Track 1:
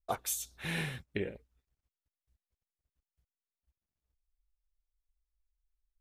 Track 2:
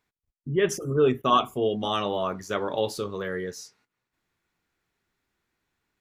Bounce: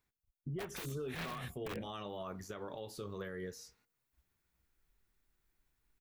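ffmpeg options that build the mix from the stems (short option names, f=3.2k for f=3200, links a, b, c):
-filter_complex "[0:a]aeval=exprs='(mod(29.9*val(0)+1,2)-1)/29.9':c=same,adelay=500,volume=2.5dB[a];[1:a]lowshelf=f=110:g=10.5,bandreject=f=236.5:t=h:w=4,bandreject=f=473:t=h:w=4,bandreject=f=709.5:t=h:w=4,acompressor=threshold=-29dB:ratio=6,volume=-8dB,asplit=2[b][c];[c]apad=whole_len=286848[d];[a][d]sidechaincompress=threshold=-43dB:ratio=8:attack=32:release=128[e];[e][b]amix=inputs=2:normalize=0,acrossover=split=3600[f][g];[g]acompressor=threshold=-53dB:ratio=4:attack=1:release=60[h];[f][h]amix=inputs=2:normalize=0,highshelf=f=10k:g=10.5,alimiter=level_in=9dB:limit=-24dB:level=0:latency=1:release=94,volume=-9dB"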